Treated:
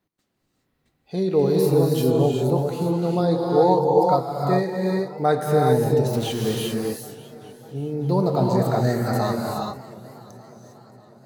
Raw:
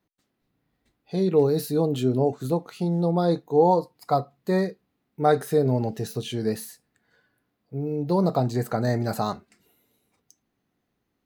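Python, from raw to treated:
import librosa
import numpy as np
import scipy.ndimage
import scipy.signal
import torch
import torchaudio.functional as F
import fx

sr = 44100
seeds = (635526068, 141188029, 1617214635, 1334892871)

y = fx.zero_step(x, sr, step_db=-33.0, at=(6.13, 6.55))
y = fx.rev_gated(y, sr, seeds[0], gate_ms=430, shape='rising', drr_db=-1.5)
y = fx.echo_warbled(y, sr, ms=595, feedback_pct=59, rate_hz=2.8, cents=124, wet_db=-19)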